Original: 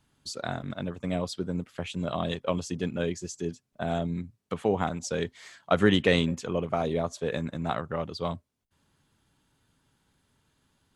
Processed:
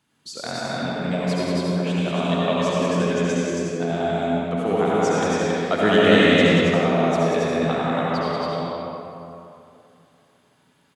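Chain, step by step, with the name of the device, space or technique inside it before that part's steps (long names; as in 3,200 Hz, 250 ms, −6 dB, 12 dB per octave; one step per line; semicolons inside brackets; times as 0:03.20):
stadium PA (high-pass filter 150 Hz 12 dB per octave; parametric band 2,300 Hz +3 dB 0.77 octaves; loudspeakers that aren't time-aligned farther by 64 metres −4 dB, 95 metres −3 dB; convolution reverb RT60 2.8 s, pre-delay 62 ms, DRR −5.5 dB)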